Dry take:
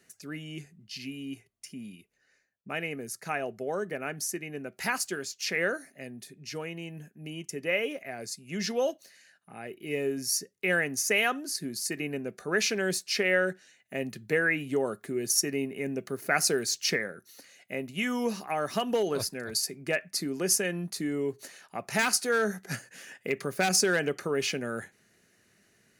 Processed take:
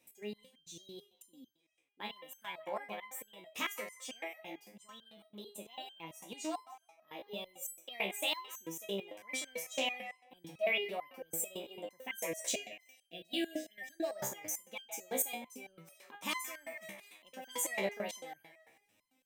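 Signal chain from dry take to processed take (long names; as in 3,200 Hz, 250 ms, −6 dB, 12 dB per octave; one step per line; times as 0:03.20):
time-frequency box erased 0:16.36–0:18.95, 570–1,200 Hz
wrong playback speed 33 rpm record played at 45 rpm
delay with a band-pass on its return 158 ms, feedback 34%, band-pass 1,300 Hz, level −9 dB
step-sequenced resonator 9 Hz 66–1,600 Hz
level +2 dB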